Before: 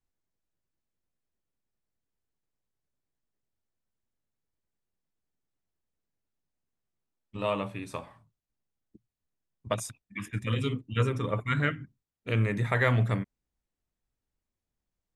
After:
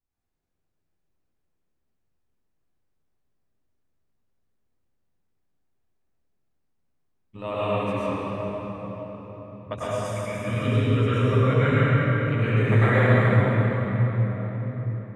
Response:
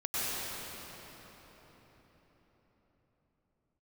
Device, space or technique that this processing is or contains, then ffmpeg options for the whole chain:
swimming-pool hall: -filter_complex "[1:a]atrim=start_sample=2205[s0];[0:a][s0]afir=irnorm=-1:irlink=0,highshelf=f=3100:g=-7.5,asettb=1/sr,asplit=3[s1][s2][s3];[s1]atrim=end=8.064[s4];[s2]atrim=start=8.06:end=10.05,asetpts=PTS-STARTPTS,afade=t=in:d=0.004:c=qsin,afade=t=out:st=1.986:d=0.004:c=qsin,highshelf=f=9400:g=-10[s5];[s3]atrim=start=10.046[s6];[s4][s5]acrossfade=d=0.004:c1=hsin:c2=qsin[s7];[s7][s6]acrossfade=d=0.004:c1=qsin:c2=hsin"

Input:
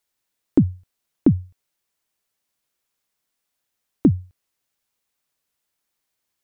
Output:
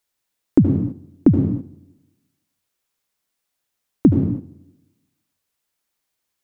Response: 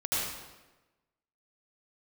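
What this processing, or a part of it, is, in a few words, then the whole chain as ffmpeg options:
keyed gated reverb: -filter_complex "[0:a]asplit=3[s0][s1][s2];[1:a]atrim=start_sample=2205[s3];[s1][s3]afir=irnorm=-1:irlink=0[s4];[s2]apad=whole_len=283767[s5];[s4][s5]sidechaingate=range=0.251:threshold=0.00398:ratio=16:detection=peak,volume=0.355[s6];[s0][s6]amix=inputs=2:normalize=0"

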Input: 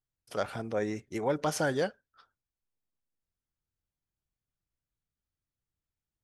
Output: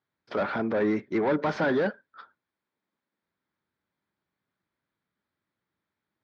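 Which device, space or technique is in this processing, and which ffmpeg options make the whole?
overdrive pedal into a guitar cabinet: -filter_complex "[0:a]asplit=2[s0][s1];[s1]highpass=f=720:p=1,volume=15.8,asoftclip=type=tanh:threshold=0.158[s2];[s0][s2]amix=inputs=2:normalize=0,lowpass=f=1100:p=1,volume=0.501,highpass=110,equalizer=f=130:t=q:w=4:g=-4,equalizer=f=200:t=q:w=4:g=4,equalizer=f=490:t=q:w=4:g=-5,equalizer=f=730:t=q:w=4:g=-7,equalizer=f=1200:t=q:w=4:g=-3,equalizer=f=2800:t=q:w=4:g=-9,lowpass=f=4100:w=0.5412,lowpass=f=4100:w=1.3066,volume=1.41"

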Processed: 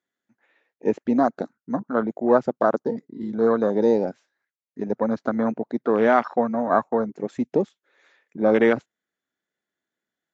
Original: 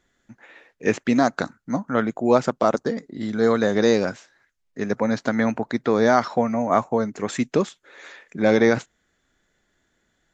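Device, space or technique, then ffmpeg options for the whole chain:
over-cleaned archive recording: -af "highpass=190,lowpass=6500,afwtdn=0.0631"

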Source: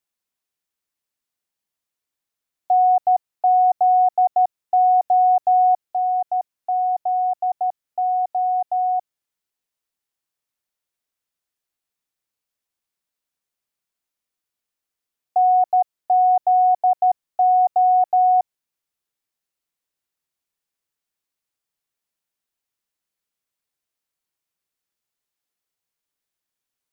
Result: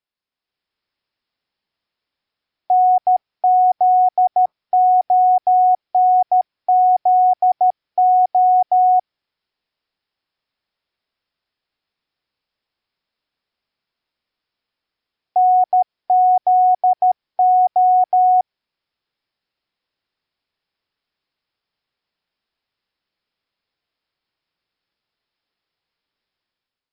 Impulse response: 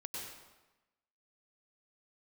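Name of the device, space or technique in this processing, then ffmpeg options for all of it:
low-bitrate web radio: -af "dynaudnorm=f=150:g=7:m=2.66,alimiter=limit=0.355:level=0:latency=1:release=91" -ar 12000 -c:a libmp3lame -b:a 40k

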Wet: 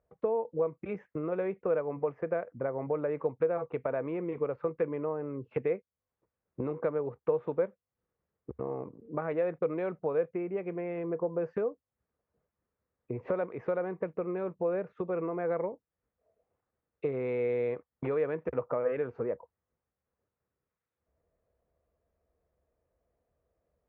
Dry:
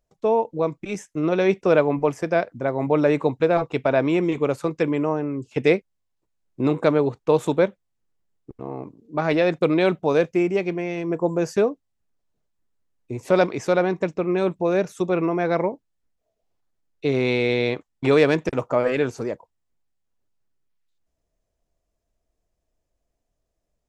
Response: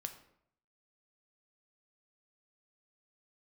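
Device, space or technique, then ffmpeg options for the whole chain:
bass amplifier: -af "acompressor=threshold=0.0178:ratio=4,highpass=61,equalizer=f=71:t=q:w=4:g=7,equalizer=f=290:t=q:w=4:g=-3,equalizer=f=490:t=q:w=4:g=9,equalizer=f=1200:t=q:w=4:g=4,lowpass=f=2100:w=0.5412,lowpass=f=2100:w=1.3066"

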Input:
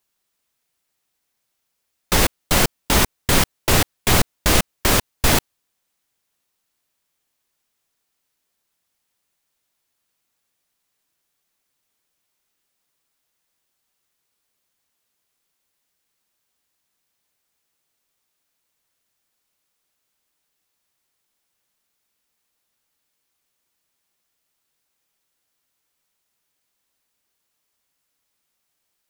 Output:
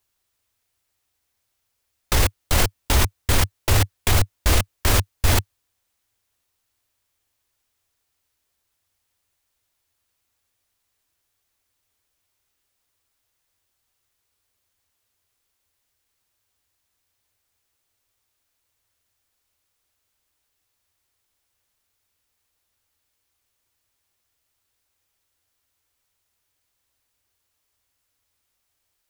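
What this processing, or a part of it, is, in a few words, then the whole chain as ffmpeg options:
car stereo with a boomy subwoofer: -af "lowshelf=f=120:t=q:w=3:g=6.5,alimiter=limit=0.398:level=0:latency=1:release=24"

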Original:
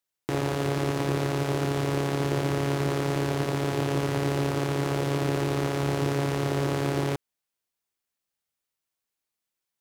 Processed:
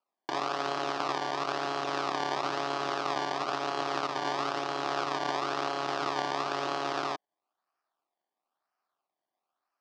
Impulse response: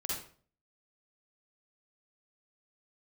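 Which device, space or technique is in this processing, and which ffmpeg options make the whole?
circuit-bent sampling toy: -af "acrusher=samples=23:mix=1:aa=0.000001:lfo=1:lforange=23:lforate=1,highpass=470,equalizer=f=480:t=q:w=4:g=-8,equalizer=f=740:t=q:w=4:g=6,equalizer=f=1200:t=q:w=4:g=8,equalizer=f=2100:t=q:w=4:g=-5,equalizer=f=5000:t=q:w=4:g=3,lowpass=f=5500:w=0.5412,lowpass=f=5500:w=1.3066,volume=0.891"

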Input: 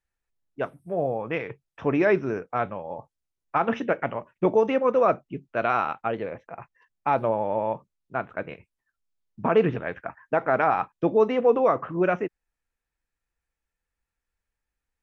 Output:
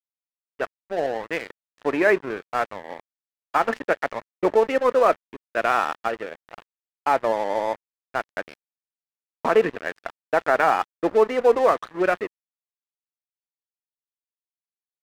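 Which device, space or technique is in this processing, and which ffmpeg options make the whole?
pocket radio on a weak battery: -af "highpass=320,lowpass=3300,aeval=exprs='sgn(val(0))*max(abs(val(0))-0.015,0)':c=same,equalizer=f=1800:t=o:w=0.28:g=5,volume=1.58"

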